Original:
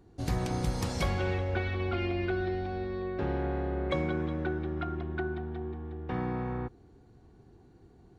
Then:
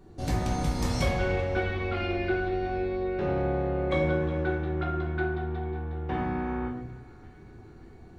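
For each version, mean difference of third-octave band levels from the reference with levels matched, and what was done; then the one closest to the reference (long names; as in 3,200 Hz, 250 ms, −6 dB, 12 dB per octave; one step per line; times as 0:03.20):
3.0 dB: in parallel at +1 dB: downward compressor, threshold −39 dBFS, peak gain reduction 13.5 dB
on the sum: feedback echo with a band-pass in the loop 571 ms, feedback 66%, band-pass 2,100 Hz, level −18 dB
rectangular room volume 120 cubic metres, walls mixed, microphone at 1.1 metres
level −3.5 dB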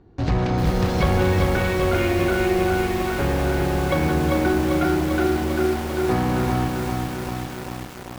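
11.0 dB: in parallel at −7.5 dB: log-companded quantiser 2 bits
on the sum: high-frequency loss of the air 180 metres
feedback echo at a low word length 395 ms, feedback 80%, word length 7 bits, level −3 dB
level +6 dB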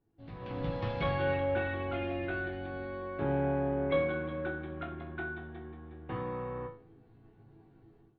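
4.5 dB: Butterworth low-pass 3,600 Hz 36 dB per octave
resonators tuned to a chord A2 major, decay 0.41 s
automatic gain control gain up to 17 dB
level −3 dB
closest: first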